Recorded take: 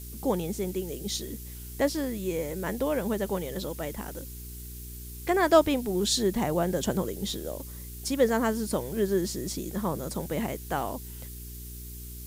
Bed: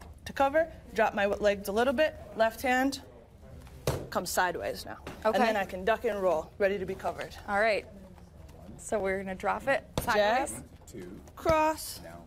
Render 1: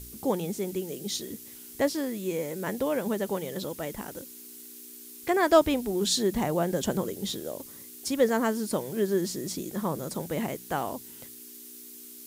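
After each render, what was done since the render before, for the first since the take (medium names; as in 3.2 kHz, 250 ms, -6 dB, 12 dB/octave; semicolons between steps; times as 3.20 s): de-hum 60 Hz, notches 3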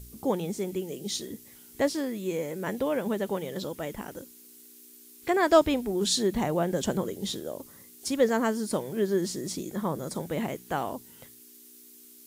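noise print and reduce 6 dB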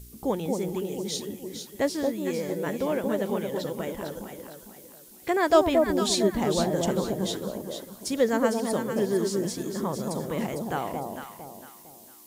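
echo whose repeats swap between lows and highs 227 ms, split 900 Hz, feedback 58%, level -2.5 dB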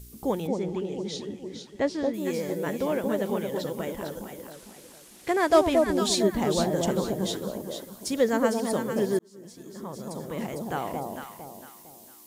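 0.47–2.14 s: distance through air 110 m; 4.52–5.98 s: CVSD coder 64 kbps; 9.19–10.95 s: fade in linear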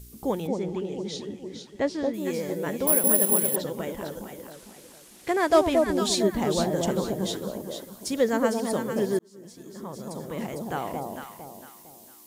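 2.87–3.56 s: careless resampling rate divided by 4×, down none, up zero stuff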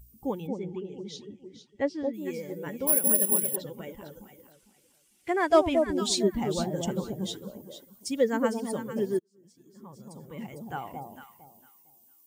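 expander on every frequency bin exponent 1.5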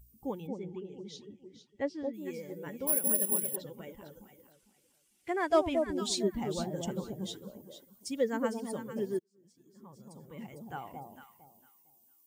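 trim -5.5 dB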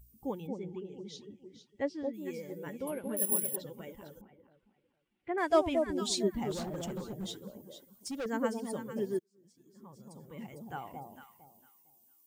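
2.72–3.17 s: low-pass that closes with the level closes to 2.8 kHz, closed at -25.5 dBFS; 4.21–5.38 s: distance through air 500 m; 6.51–8.26 s: overload inside the chain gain 34 dB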